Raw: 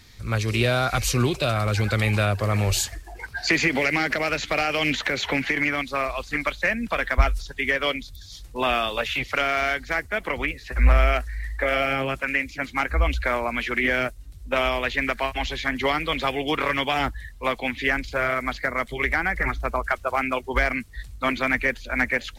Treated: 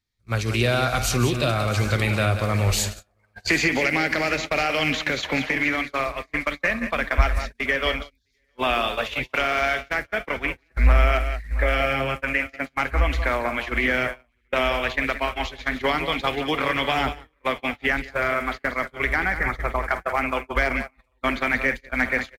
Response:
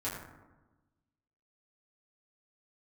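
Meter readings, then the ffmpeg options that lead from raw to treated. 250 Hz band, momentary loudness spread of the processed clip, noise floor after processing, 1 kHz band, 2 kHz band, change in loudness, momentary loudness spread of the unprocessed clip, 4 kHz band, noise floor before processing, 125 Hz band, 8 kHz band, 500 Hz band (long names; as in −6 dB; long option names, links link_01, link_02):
+0.5 dB, 6 LU, −67 dBFS, +0.5 dB, +0.5 dB, +0.5 dB, 6 LU, 0.0 dB, −43 dBFS, +0.5 dB, +0.5 dB, +0.5 dB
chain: -af "aecho=1:1:51|142|183|671|746|798:0.168|0.106|0.335|0.133|0.133|0.112,agate=range=-32dB:threshold=-26dB:ratio=16:detection=peak"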